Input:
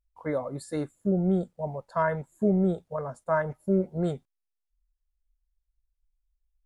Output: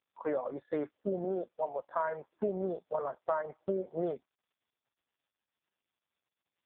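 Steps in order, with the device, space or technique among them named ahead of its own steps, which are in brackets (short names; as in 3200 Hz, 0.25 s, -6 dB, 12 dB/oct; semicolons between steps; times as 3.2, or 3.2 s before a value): 1.24–1.79 HPF 270 Hz 12 dB/oct; voicemail (BPF 420–3000 Hz; compressor 8:1, threshold -33 dBFS, peak gain reduction 12 dB; gain +5 dB; AMR-NB 4.75 kbps 8000 Hz)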